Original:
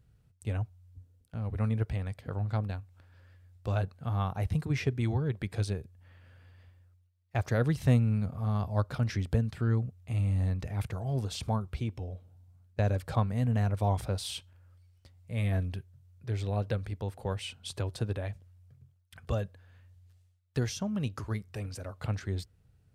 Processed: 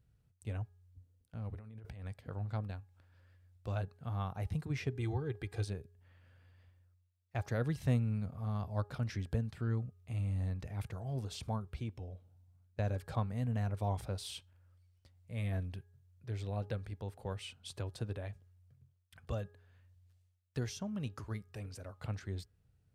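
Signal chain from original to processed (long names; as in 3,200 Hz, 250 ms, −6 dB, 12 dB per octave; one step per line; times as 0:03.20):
0:01.54–0:02.07: compressor whose output falls as the input rises −41 dBFS, ratio −1
0:04.95–0:05.65: comb filter 2.5 ms, depth 65%
hum removal 413 Hz, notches 4
level −7 dB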